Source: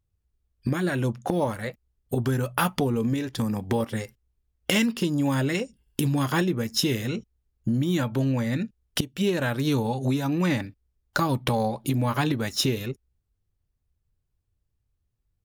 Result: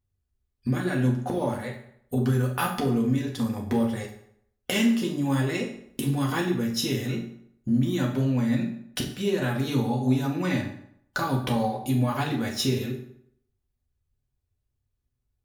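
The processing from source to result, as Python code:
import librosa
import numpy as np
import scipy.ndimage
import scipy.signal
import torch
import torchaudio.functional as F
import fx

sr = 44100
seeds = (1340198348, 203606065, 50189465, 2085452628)

y = fx.rev_fdn(x, sr, rt60_s=0.69, lf_ratio=0.95, hf_ratio=0.75, size_ms=24.0, drr_db=-1.0)
y = y * librosa.db_to_amplitude(-5.5)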